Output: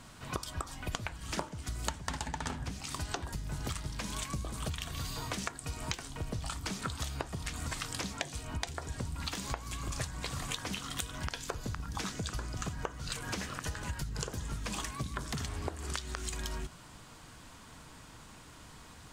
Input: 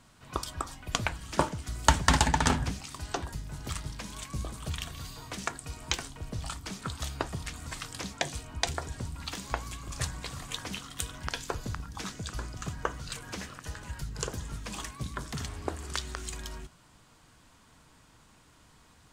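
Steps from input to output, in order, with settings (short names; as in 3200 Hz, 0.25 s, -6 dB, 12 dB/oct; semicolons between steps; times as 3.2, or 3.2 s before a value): compressor 16:1, threshold -40 dBFS, peak gain reduction 25.5 dB; gain +7 dB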